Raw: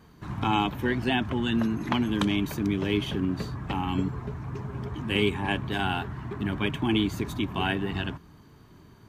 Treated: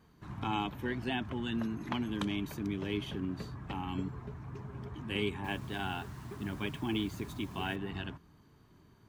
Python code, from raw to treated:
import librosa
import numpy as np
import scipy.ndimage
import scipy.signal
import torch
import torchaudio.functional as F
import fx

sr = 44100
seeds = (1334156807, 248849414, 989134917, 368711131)

y = fx.quant_dither(x, sr, seeds[0], bits=8, dither='none', at=(5.44, 7.76))
y = y * librosa.db_to_amplitude(-9.0)